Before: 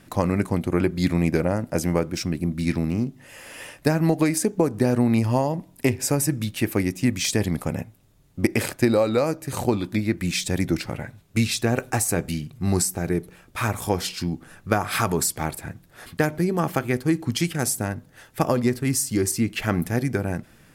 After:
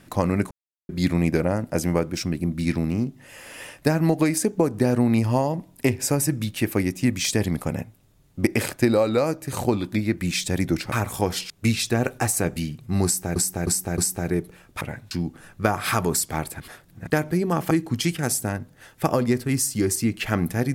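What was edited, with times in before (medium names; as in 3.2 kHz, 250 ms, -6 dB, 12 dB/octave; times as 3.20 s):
0.51–0.89 s: mute
10.92–11.22 s: swap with 13.60–14.18 s
12.77–13.08 s: loop, 4 plays
15.67–16.14 s: reverse
16.78–17.07 s: delete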